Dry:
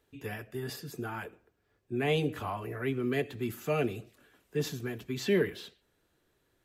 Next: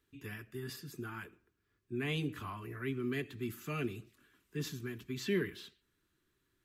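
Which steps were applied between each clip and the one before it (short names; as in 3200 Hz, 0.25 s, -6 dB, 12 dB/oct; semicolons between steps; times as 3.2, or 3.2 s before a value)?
band shelf 630 Hz -12 dB 1.1 oct; gain -4.5 dB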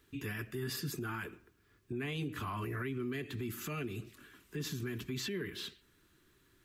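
compressor 5:1, threshold -43 dBFS, peak gain reduction 14 dB; limiter -40.5 dBFS, peak gain reduction 8.5 dB; gain +10.5 dB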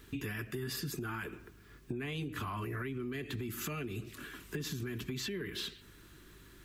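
compressor 6:1, threshold -47 dBFS, peak gain reduction 12.5 dB; hum 50 Hz, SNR 21 dB; gain +10.5 dB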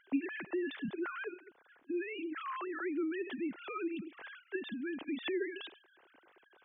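sine-wave speech; gain +1 dB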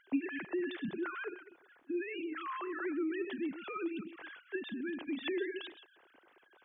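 reverse delay 0.13 s, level -12 dB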